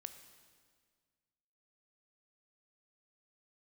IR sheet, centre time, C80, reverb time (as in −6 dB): 18 ms, 11.0 dB, 1.8 s